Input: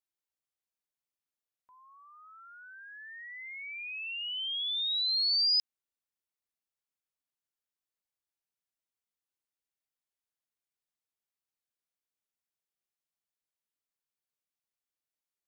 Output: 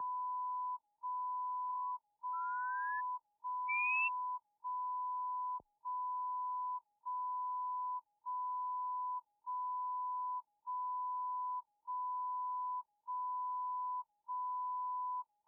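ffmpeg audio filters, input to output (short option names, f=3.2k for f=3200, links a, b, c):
-af "aeval=exprs='val(0)+0.00891*sin(2*PI*980*n/s)':c=same,afreqshift=19,afftfilt=real='re*lt(b*sr/1024,830*pow(3500/830,0.5+0.5*sin(2*PI*0.83*pts/sr)))':imag='im*lt(b*sr/1024,830*pow(3500/830,0.5+0.5*sin(2*PI*0.83*pts/sr)))':win_size=1024:overlap=0.75,volume=4.5dB"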